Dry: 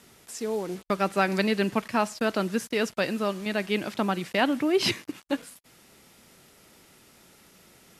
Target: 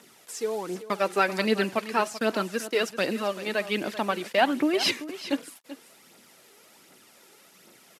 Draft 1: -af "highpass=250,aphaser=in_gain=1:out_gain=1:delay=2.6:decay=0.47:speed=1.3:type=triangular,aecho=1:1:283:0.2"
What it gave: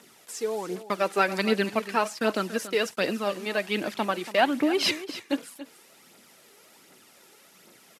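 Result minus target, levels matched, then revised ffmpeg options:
echo 103 ms early
-af "highpass=250,aphaser=in_gain=1:out_gain=1:delay=2.6:decay=0.47:speed=1.3:type=triangular,aecho=1:1:386:0.2"

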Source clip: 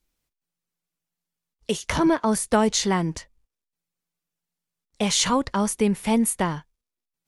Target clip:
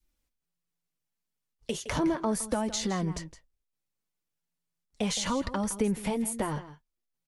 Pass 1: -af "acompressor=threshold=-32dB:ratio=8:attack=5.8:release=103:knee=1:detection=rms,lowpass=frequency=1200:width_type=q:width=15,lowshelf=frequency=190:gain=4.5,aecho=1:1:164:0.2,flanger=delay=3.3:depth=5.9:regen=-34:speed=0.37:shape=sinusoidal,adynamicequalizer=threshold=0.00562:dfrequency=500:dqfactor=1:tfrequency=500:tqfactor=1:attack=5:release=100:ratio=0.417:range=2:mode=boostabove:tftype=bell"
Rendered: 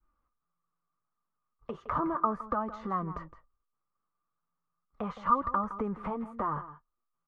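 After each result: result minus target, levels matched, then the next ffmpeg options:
1,000 Hz band +8.0 dB; downward compressor: peak gain reduction +7 dB
-af "acompressor=threshold=-32dB:ratio=8:attack=5.8:release=103:knee=1:detection=rms,lowshelf=frequency=190:gain=4.5,aecho=1:1:164:0.2,flanger=delay=3.3:depth=5.9:regen=-34:speed=0.37:shape=sinusoidal,adynamicequalizer=threshold=0.00562:dfrequency=500:dqfactor=1:tfrequency=500:tqfactor=1:attack=5:release=100:ratio=0.417:range=2:mode=boostabove:tftype=bell"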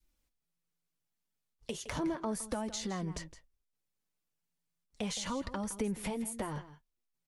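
downward compressor: peak gain reduction +7 dB
-af "acompressor=threshold=-24dB:ratio=8:attack=5.8:release=103:knee=1:detection=rms,lowshelf=frequency=190:gain=4.5,aecho=1:1:164:0.2,flanger=delay=3.3:depth=5.9:regen=-34:speed=0.37:shape=sinusoidal,adynamicequalizer=threshold=0.00562:dfrequency=500:dqfactor=1:tfrequency=500:tqfactor=1:attack=5:release=100:ratio=0.417:range=2:mode=boostabove:tftype=bell"

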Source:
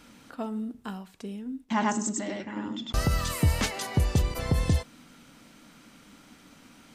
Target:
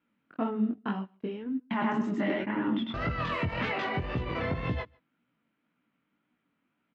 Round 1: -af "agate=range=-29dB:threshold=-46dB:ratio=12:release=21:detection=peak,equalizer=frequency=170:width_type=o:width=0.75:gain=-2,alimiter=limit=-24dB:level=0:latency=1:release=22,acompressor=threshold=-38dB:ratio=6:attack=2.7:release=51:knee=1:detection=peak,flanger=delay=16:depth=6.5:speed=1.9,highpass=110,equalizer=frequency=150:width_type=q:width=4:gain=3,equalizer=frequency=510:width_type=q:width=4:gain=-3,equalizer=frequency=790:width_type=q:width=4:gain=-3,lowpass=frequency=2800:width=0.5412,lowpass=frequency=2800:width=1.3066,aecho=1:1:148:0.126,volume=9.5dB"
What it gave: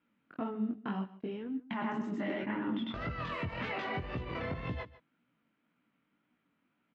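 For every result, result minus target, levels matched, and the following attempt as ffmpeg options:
echo-to-direct +11.5 dB; downward compressor: peak gain reduction +6.5 dB
-af "agate=range=-29dB:threshold=-46dB:ratio=12:release=21:detection=peak,equalizer=frequency=170:width_type=o:width=0.75:gain=-2,alimiter=limit=-24dB:level=0:latency=1:release=22,acompressor=threshold=-38dB:ratio=6:attack=2.7:release=51:knee=1:detection=peak,flanger=delay=16:depth=6.5:speed=1.9,highpass=110,equalizer=frequency=150:width_type=q:width=4:gain=3,equalizer=frequency=510:width_type=q:width=4:gain=-3,equalizer=frequency=790:width_type=q:width=4:gain=-3,lowpass=frequency=2800:width=0.5412,lowpass=frequency=2800:width=1.3066,aecho=1:1:148:0.0335,volume=9.5dB"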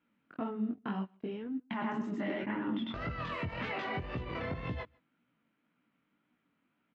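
downward compressor: peak gain reduction +6.5 dB
-af "agate=range=-29dB:threshold=-46dB:ratio=12:release=21:detection=peak,equalizer=frequency=170:width_type=o:width=0.75:gain=-2,alimiter=limit=-24dB:level=0:latency=1:release=22,acompressor=threshold=-30dB:ratio=6:attack=2.7:release=51:knee=1:detection=peak,flanger=delay=16:depth=6.5:speed=1.9,highpass=110,equalizer=frequency=150:width_type=q:width=4:gain=3,equalizer=frequency=510:width_type=q:width=4:gain=-3,equalizer=frequency=790:width_type=q:width=4:gain=-3,lowpass=frequency=2800:width=0.5412,lowpass=frequency=2800:width=1.3066,aecho=1:1:148:0.0335,volume=9.5dB"

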